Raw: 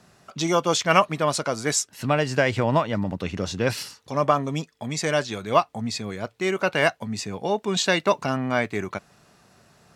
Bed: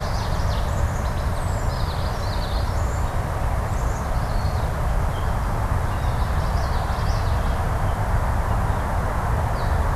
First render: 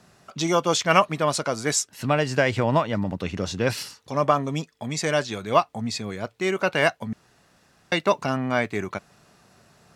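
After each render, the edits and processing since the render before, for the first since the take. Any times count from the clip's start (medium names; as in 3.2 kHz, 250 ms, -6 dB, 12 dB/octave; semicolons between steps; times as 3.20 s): 7.13–7.92 s: room tone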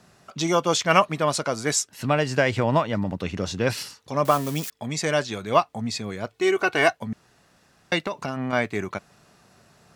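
4.25–4.70 s: zero-crossing glitches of -22.5 dBFS; 6.32–6.93 s: comb 2.7 ms, depth 69%; 8.03–8.53 s: compression 12:1, threshold -23 dBFS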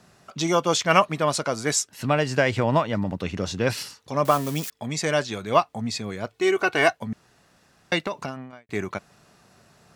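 8.22–8.69 s: fade out quadratic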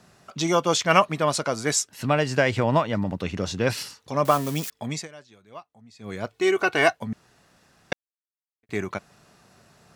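4.92–6.14 s: dip -22.5 dB, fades 0.16 s; 7.93–8.63 s: mute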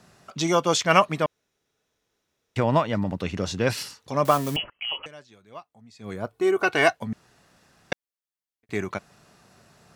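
1.26–2.56 s: room tone; 4.56–5.06 s: frequency inversion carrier 3.1 kHz; 6.13–6.63 s: high-order bell 3.6 kHz -9 dB 2.3 oct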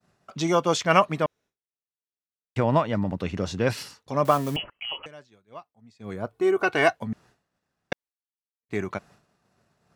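treble shelf 2.5 kHz -5.5 dB; expander -48 dBFS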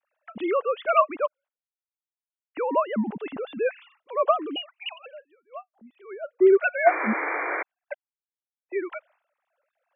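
formants replaced by sine waves; 6.86–7.63 s: painted sound noise 290–2400 Hz -28 dBFS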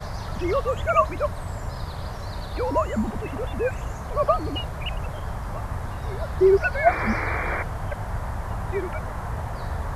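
add bed -8 dB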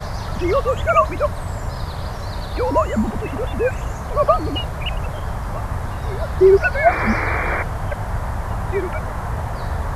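trim +5.5 dB; peak limiter -3 dBFS, peak gain reduction 2.5 dB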